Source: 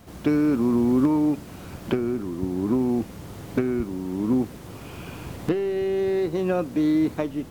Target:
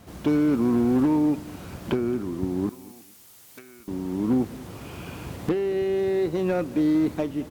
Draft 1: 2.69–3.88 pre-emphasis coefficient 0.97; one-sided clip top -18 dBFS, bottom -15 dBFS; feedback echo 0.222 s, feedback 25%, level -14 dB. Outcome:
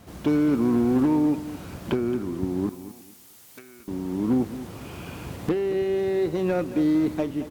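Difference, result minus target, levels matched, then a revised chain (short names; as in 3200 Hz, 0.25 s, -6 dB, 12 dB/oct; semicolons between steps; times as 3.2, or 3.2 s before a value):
echo-to-direct +6.5 dB
2.69–3.88 pre-emphasis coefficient 0.97; one-sided clip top -18 dBFS, bottom -15 dBFS; feedback echo 0.222 s, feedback 25%, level -20.5 dB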